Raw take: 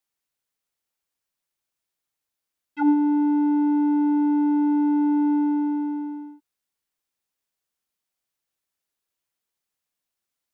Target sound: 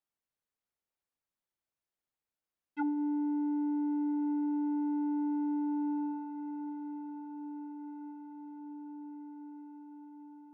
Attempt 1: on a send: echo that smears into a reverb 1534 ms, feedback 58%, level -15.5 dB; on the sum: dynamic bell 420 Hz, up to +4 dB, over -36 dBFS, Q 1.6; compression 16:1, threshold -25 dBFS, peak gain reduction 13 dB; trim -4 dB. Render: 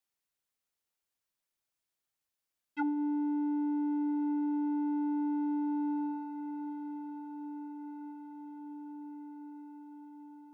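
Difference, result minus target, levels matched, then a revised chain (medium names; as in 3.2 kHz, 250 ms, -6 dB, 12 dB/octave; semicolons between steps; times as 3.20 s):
2 kHz band +3.5 dB
on a send: echo that smears into a reverb 1534 ms, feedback 58%, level -15.5 dB; on the sum: dynamic bell 420 Hz, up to +4 dB, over -36 dBFS, Q 1.6; compression 16:1, threshold -25 dBFS, peak gain reduction 13 dB; treble shelf 2.3 kHz -11 dB; trim -4 dB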